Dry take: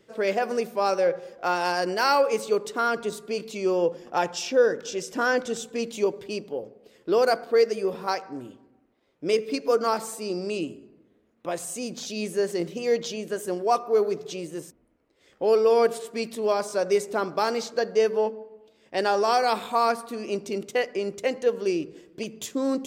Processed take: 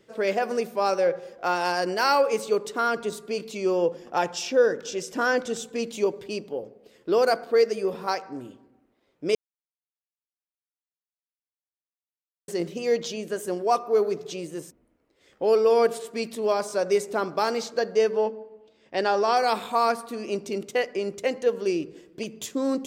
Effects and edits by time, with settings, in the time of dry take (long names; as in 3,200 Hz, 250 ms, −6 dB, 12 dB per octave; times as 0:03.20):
0:09.35–0:12.48: silence
0:18.04–0:19.35: low-pass filter 9,300 Hz → 5,200 Hz